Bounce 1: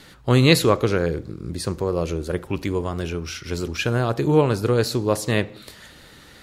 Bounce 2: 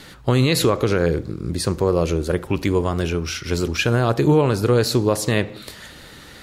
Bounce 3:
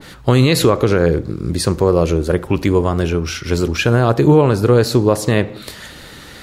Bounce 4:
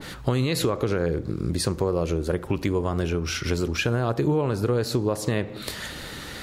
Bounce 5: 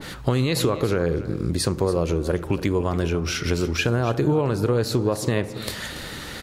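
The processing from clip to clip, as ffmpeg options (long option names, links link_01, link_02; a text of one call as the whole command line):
ffmpeg -i in.wav -af "alimiter=limit=-12.5dB:level=0:latency=1:release=97,volume=5dB" out.wav
ffmpeg -i in.wav -af "adynamicequalizer=threshold=0.0158:dfrequency=1800:dqfactor=0.7:tfrequency=1800:tqfactor=0.7:attack=5:release=100:ratio=0.375:range=2.5:mode=cutabove:tftype=highshelf,volume=5dB" out.wav
ffmpeg -i in.wav -af "acompressor=threshold=-24dB:ratio=3" out.wav
ffmpeg -i in.wav -af "aecho=1:1:283:0.178,volume=2dB" out.wav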